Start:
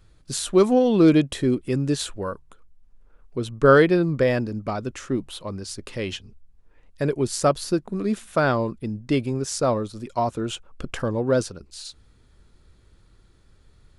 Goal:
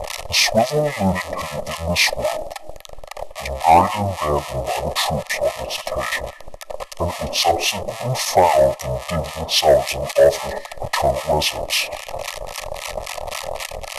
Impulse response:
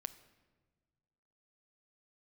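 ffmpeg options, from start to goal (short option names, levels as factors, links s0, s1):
-filter_complex "[0:a]aeval=exprs='val(0)+0.5*0.0562*sgn(val(0))':c=same,asplit=2[s0][s1];[s1]highpass=f=980:t=q:w=5.7[s2];[1:a]atrim=start_sample=2205[s3];[s2][s3]afir=irnorm=-1:irlink=0,volume=4.22[s4];[s0][s4]amix=inputs=2:normalize=0,acrossover=split=1600[s5][s6];[s5]aeval=exprs='val(0)*(1-1/2+1/2*cos(2*PI*3.7*n/s))':c=same[s7];[s6]aeval=exprs='val(0)*(1-1/2-1/2*cos(2*PI*3.7*n/s))':c=same[s8];[s7][s8]amix=inputs=2:normalize=0,acrusher=bits=6:mode=log:mix=0:aa=0.000001,asetrate=26222,aresample=44100,atempo=1.68179,asuperstop=centerf=1500:order=20:qfactor=4.3,asoftclip=type=tanh:threshold=0.631"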